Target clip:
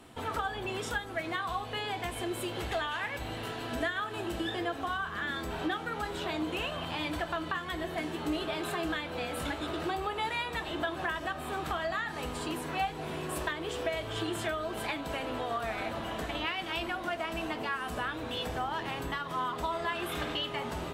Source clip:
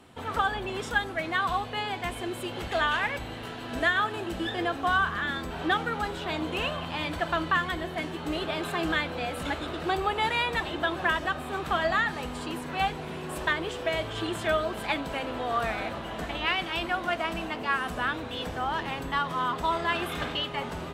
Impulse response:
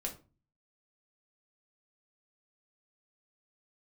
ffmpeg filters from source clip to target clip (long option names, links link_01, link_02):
-filter_complex "[0:a]acompressor=threshold=-32dB:ratio=4,asplit=2[link_01][link_02];[1:a]atrim=start_sample=2205,asetrate=66150,aresample=44100,highshelf=frequency=5900:gain=10.5[link_03];[link_02][link_03]afir=irnorm=-1:irlink=0,volume=-0.5dB[link_04];[link_01][link_04]amix=inputs=2:normalize=0,volume=-3.5dB"